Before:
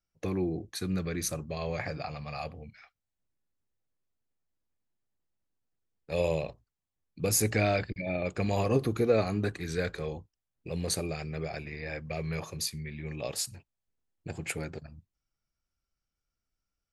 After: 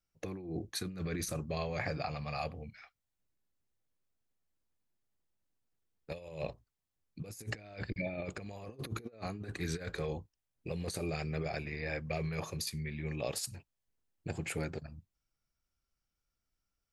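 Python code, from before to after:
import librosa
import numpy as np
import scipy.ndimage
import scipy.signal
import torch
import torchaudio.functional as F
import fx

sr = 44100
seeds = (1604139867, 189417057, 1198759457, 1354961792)

y = fx.over_compress(x, sr, threshold_db=-34.0, ratio=-0.5)
y = y * librosa.db_to_amplitude(-3.5)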